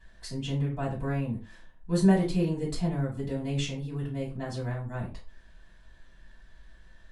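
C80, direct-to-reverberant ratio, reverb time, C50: 15.0 dB, −6.5 dB, non-exponential decay, 9.0 dB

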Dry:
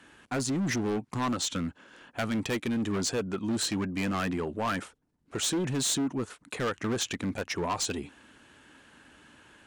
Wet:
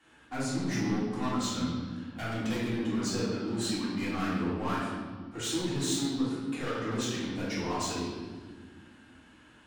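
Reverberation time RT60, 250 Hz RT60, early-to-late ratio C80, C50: 1.6 s, 2.8 s, 2.0 dB, −1.0 dB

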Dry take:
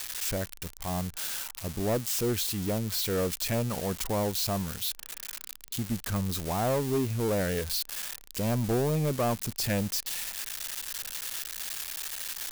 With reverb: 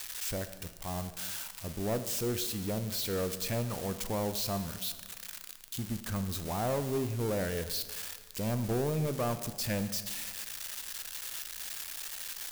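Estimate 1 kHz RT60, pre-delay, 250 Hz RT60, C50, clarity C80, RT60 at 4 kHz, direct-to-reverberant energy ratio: 1.5 s, 9 ms, 1.6 s, 11.5 dB, 12.5 dB, 1.2 s, 9.5 dB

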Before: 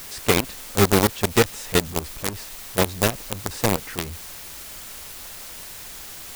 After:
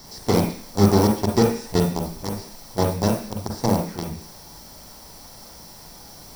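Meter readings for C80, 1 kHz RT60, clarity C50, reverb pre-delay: 10.5 dB, 0.45 s, 5.5 dB, 38 ms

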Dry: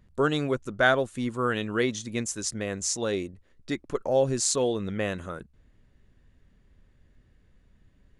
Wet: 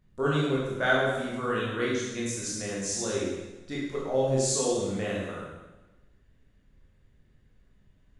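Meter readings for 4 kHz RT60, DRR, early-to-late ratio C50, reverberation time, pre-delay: 1.1 s, −6.0 dB, −0.5 dB, 1.1 s, 16 ms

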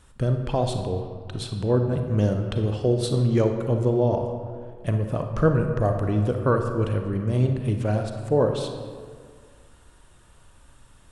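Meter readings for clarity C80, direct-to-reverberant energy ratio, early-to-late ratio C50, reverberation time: 7.0 dB, 4.5 dB, 5.5 dB, 1.9 s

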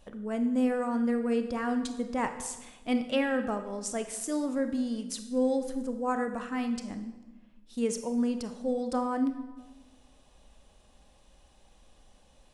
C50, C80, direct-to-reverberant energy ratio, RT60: 9.5 dB, 11.5 dB, 7.5 dB, 1.2 s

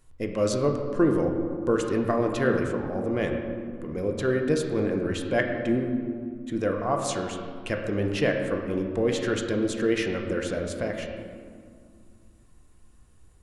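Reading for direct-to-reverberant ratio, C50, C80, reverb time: 2.0 dB, 4.5 dB, 5.5 dB, 2.2 s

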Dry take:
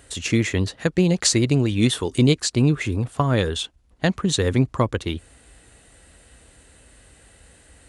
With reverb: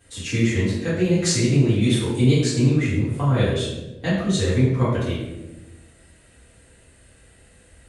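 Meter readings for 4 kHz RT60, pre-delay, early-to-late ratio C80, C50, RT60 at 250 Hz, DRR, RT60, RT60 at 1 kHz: 0.65 s, 4 ms, 3.5 dB, 1.0 dB, 1.4 s, −13.0 dB, 1.1 s, 0.90 s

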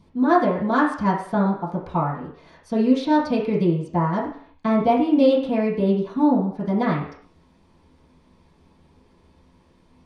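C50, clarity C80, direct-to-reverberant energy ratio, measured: 5.5 dB, 9.0 dB, −10.5 dB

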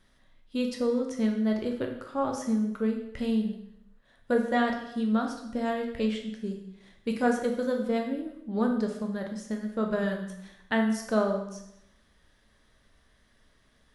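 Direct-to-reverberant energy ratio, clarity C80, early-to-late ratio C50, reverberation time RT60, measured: 2.0 dB, 9.0 dB, 6.0 dB, 0.80 s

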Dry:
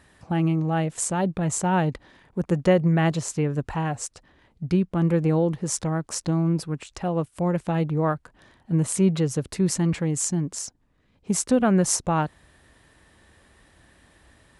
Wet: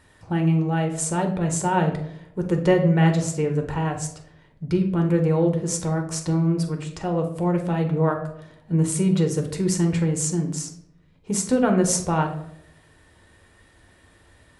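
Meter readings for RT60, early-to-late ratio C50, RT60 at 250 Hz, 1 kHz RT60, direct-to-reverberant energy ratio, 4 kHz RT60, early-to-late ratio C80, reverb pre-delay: 0.75 s, 9.0 dB, 0.80 s, 0.65 s, 3.5 dB, 0.45 s, 12.5 dB, 3 ms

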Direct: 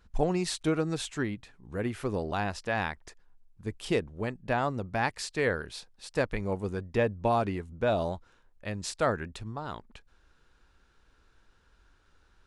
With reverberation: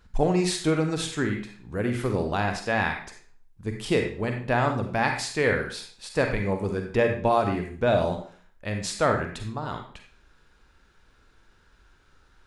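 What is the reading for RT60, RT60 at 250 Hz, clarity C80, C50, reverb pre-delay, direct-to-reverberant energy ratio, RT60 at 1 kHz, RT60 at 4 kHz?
0.50 s, 0.45 s, 9.0 dB, 5.0 dB, 38 ms, 3.0 dB, 0.50 s, 0.40 s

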